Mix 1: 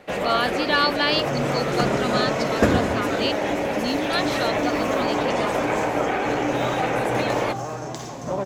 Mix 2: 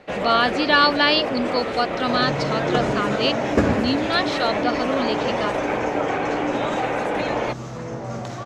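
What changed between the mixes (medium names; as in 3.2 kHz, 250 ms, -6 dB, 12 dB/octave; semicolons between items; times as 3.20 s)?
speech +5.0 dB; second sound: entry +0.95 s; master: add distance through air 64 m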